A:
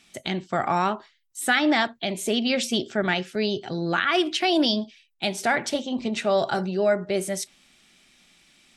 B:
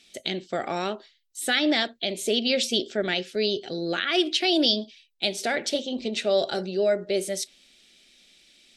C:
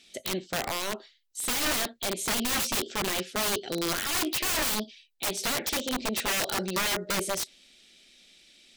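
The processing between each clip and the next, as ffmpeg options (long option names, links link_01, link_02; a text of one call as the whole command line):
ffmpeg -i in.wav -af "equalizer=frequency=125:width_type=o:width=1:gain=-11,equalizer=frequency=500:width_type=o:width=1:gain=7,equalizer=frequency=1000:width_type=o:width=1:gain=-12,equalizer=frequency=4000:width_type=o:width=1:gain=7,volume=-2dB" out.wav
ffmpeg -i in.wav -af "aeval=exprs='(mod(13.3*val(0)+1,2)-1)/13.3':channel_layout=same" out.wav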